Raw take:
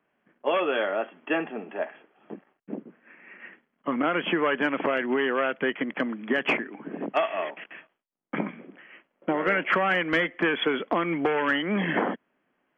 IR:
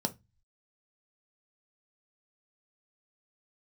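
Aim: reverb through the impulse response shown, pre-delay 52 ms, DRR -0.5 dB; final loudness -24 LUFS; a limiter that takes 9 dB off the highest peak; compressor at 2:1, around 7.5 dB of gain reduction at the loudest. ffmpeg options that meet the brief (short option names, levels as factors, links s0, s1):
-filter_complex "[0:a]acompressor=threshold=0.02:ratio=2,alimiter=level_in=1.5:limit=0.0631:level=0:latency=1,volume=0.668,asplit=2[s0][s1];[1:a]atrim=start_sample=2205,adelay=52[s2];[s1][s2]afir=irnorm=-1:irlink=0,volume=0.668[s3];[s0][s3]amix=inputs=2:normalize=0,volume=2.37"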